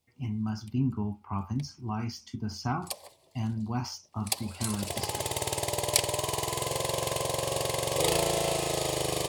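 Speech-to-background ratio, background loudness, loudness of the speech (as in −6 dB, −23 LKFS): −5.0 dB, −29.5 LKFS, −34.5 LKFS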